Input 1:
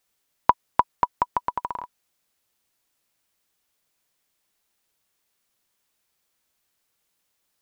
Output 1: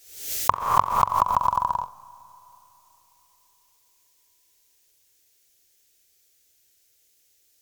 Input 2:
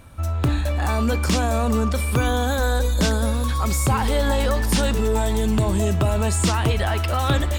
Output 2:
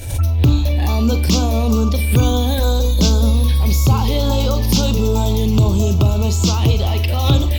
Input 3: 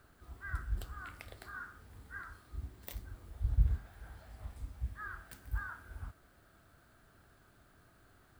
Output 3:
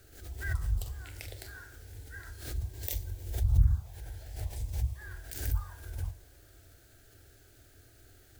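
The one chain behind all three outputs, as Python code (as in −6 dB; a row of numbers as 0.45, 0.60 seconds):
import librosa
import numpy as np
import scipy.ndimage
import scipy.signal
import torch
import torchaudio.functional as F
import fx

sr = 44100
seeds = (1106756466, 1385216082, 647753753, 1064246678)

p1 = fx.graphic_eq_15(x, sr, hz=(100, 630, 6300, 16000), db=(6, -4, 6, 6))
p2 = fx.rider(p1, sr, range_db=4, speed_s=0.5)
p3 = p1 + (p2 * 10.0 ** (2.0 / 20.0))
p4 = fx.env_phaser(p3, sr, low_hz=180.0, high_hz=1800.0, full_db=-8.0)
p5 = p4 + fx.room_flutter(p4, sr, wall_m=7.6, rt60_s=0.22, dry=0)
p6 = fx.rev_schroeder(p5, sr, rt60_s=3.7, comb_ms=31, drr_db=19.5)
p7 = fx.pre_swell(p6, sr, db_per_s=83.0)
y = p7 * 10.0 ** (-2.5 / 20.0)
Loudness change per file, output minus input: +3.5, +5.5, +6.5 LU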